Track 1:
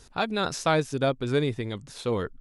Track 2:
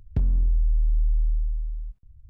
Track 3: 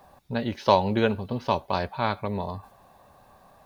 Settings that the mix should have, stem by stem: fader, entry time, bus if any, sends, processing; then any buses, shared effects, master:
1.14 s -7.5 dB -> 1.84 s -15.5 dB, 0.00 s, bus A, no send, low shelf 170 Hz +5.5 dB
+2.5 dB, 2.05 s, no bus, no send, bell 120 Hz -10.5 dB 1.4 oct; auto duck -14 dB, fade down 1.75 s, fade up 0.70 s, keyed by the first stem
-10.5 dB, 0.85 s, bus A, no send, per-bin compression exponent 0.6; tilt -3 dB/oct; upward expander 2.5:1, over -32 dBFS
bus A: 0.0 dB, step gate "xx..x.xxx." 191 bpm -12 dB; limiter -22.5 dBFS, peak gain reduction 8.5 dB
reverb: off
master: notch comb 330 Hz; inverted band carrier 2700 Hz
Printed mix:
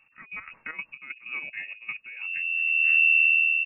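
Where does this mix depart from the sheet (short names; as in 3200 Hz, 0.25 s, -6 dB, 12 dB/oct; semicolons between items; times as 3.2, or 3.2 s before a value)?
stem 1: missing low shelf 170 Hz +5.5 dB; stem 3: missing per-bin compression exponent 0.6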